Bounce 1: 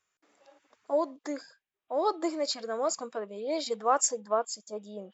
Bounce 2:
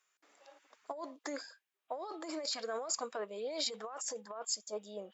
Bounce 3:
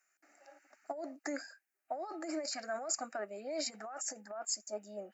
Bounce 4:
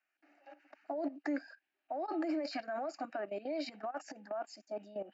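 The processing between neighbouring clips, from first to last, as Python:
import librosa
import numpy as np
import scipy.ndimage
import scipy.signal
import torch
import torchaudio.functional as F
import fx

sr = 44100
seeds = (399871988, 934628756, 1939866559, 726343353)

y1 = fx.over_compress(x, sr, threshold_db=-34.0, ratio=-1.0)
y1 = fx.highpass(y1, sr, hz=630.0, slope=6)
y1 = F.gain(torch.from_numpy(y1), -2.0).numpy()
y2 = fx.fixed_phaser(y1, sr, hz=690.0, stages=8)
y2 = F.gain(torch.from_numpy(y2), 3.5).numpy()
y3 = fx.level_steps(y2, sr, step_db=15)
y3 = fx.cabinet(y3, sr, low_hz=220.0, low_slope=12, high_hz=3800.0, hz=(290.0, 460.0, 1300.0, 2000.0, 2900.0), db=(7, -6, -6, -5, 5))
y3 = F.gain(torch.from_numpy(y3), 9.0).numpy()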